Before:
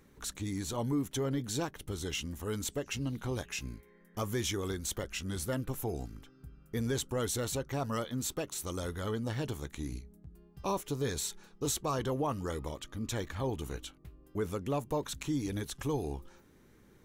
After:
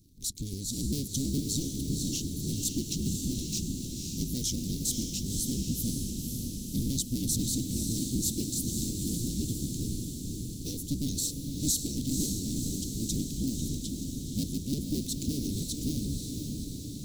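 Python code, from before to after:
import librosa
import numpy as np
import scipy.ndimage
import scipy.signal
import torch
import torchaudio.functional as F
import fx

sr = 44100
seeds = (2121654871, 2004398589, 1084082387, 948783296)

y = fx.cycle_switch(x, sr, every=2, mode='inverted')
y = scipy.signal.sosfilt(scipy.signal.ellip(3, 1.0, 80, [280.0, 4300.0], 'bandstop', fs=sr, output='sos'), y)
y = fx.dynamic_eq(y, sr, hz=880.0, q=0.86, threshold_db=-58.0, ratio=4.0, max_db=6)
y = fx.hpss(y, sr, part='percussive', gain_db=7)
y = fx.echo_diffused(y, sr, ms=531, feedback_pct=66, wet_db=-4.0)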